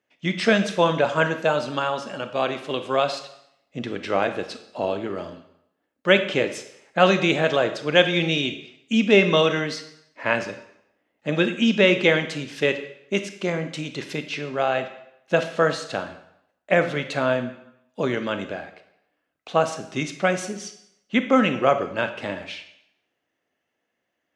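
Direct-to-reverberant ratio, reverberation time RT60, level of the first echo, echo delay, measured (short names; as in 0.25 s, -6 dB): 8.5 dB, 0.75 s, none, none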